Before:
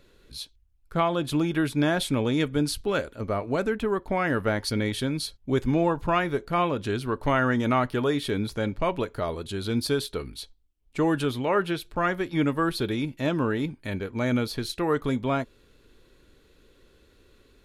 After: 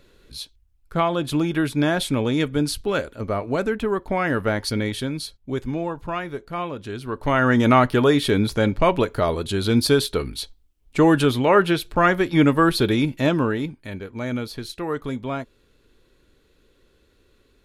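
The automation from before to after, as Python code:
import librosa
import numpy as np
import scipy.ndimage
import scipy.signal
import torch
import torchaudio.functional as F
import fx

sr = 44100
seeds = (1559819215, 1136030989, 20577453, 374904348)

y = fx.gain(x, sr, db=fx.line((4.71, 3.0), (5.85, -4.0), (6.92, -4.0), (7.61, 8.0), (13.16, 8.0), (13.89, -2.0)))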